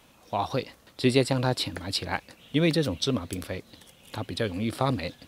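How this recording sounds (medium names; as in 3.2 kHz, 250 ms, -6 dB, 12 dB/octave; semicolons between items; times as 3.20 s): noise floor -58 dBFS; spectral tilt -4.5 dB/octave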